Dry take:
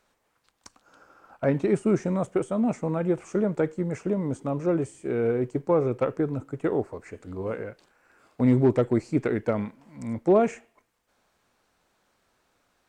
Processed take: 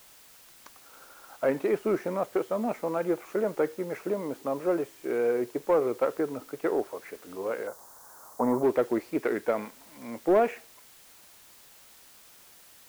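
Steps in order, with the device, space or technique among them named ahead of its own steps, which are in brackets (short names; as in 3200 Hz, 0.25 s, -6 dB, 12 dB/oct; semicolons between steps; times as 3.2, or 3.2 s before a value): tape answering machine (BPF 400–3000 Hz; soft clip -16 dBFS, distortion -20 dB; wow and flutter; white noise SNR 24 dB); 7.67–8.63 EQ curve 400 Hz 0 dB, 1000 Hz +12 dB, 2500 Hz -17 dB, 6300 Hz +3 dB; gain +2 dB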